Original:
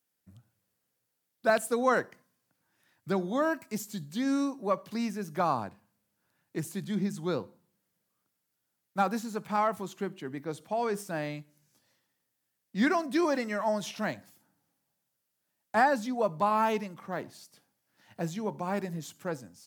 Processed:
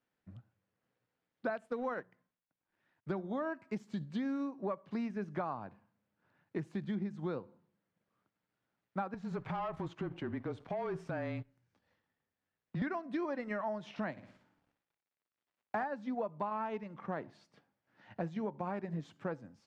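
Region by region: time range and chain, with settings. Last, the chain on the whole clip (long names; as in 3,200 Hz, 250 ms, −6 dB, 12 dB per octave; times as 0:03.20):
0:01.65–0:03.11: mu-law and A-law mismatch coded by A + mains-hum notches 60/120/180 Hz
0:09.14–0:12.82: leveller curve on the samples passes 2 + downward compressor 2.5 to 1, threshold −41 dBFS + frequency shifter −27 Hz
0:14.11–0:15.84: variable-slope delta modulation 64 kbit/s + flutter between parallel walls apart 10.1 metres, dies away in 0.5 s
whole clip: low-pass filter 2,300 Hz 12 dB per octave; transient designer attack −1 dB, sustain −5 dB; downward compressor 12 to 1, threshold −37 dBFS; level +3.5 dB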